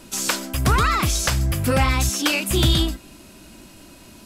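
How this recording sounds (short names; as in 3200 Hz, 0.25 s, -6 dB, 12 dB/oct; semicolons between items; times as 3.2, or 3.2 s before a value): noise floor -46 dBFS; spectral tilt -4.0 dB/oct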